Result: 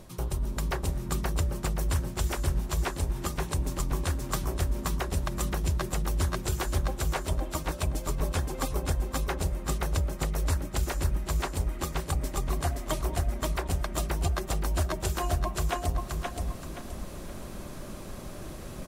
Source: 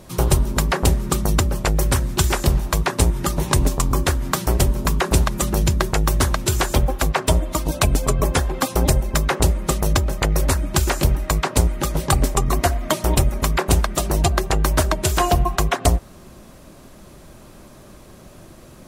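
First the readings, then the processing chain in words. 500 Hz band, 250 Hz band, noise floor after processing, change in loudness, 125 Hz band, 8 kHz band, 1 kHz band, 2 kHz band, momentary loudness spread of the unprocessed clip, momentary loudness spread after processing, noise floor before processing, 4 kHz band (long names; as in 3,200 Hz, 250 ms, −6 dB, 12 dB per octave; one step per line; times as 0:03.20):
−11.5 dB, −11.5 dB, −41 dBFS, −11.0 dB, −10.0 dB, −12.5 dB, −11.5 dB, −11.5 dB, 2 LU, 10 LU, −44 dBFS, −12.5 dB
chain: low-shelf EQ 61 Hz +6.5 dB
reversed playback
downward compressor 10 to 1, threshold −27 dBFS, peak gain reduction 19.5 dB
reversed playback
repeating echo 524 ms, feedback 34%, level −3 dB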